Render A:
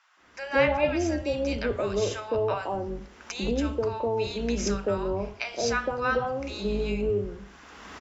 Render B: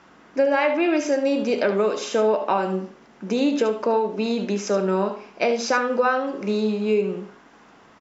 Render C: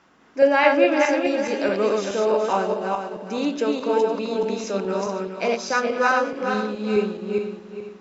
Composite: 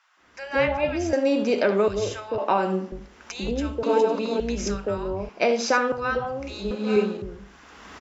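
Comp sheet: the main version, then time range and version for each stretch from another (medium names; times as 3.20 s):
A
1.13–1.88 s: from B
2.38–2.92 s: from B
3.83–4.40 s: from C
5.29–5.92 s: from B
6.71–7.22 s: from C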